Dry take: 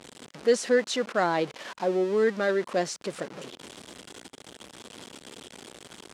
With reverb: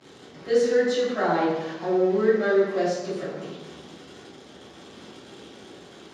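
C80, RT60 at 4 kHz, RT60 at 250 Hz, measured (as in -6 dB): 3.0 dB, 0.75 s, 1.4 s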